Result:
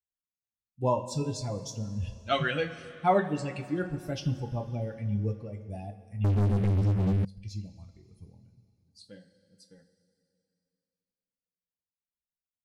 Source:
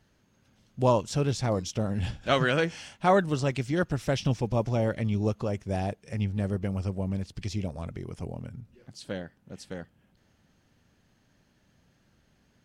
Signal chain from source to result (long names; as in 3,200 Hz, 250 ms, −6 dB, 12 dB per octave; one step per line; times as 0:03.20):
spectral dynamics exaggerated over time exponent 2
coupled-rooms reverb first 0.26 s, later 2.8 s, from −17 dB, DRR 3 dB
0:06.24–0:07.25: leveller curve on the samples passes 5
level −1.5 dB